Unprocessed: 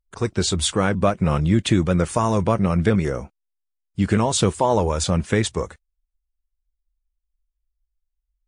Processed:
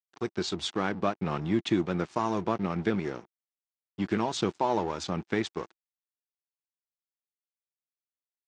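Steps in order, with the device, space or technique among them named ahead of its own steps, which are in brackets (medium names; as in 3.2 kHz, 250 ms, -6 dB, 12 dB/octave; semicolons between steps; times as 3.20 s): blown loudspeaker (crossover distortion -33 dBFS; cabinet simulation 180–5800 Hz, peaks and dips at 340 Hz +5 dB, 530 Hz -6 dB, 820 Hz +3 dB); trim -7 dB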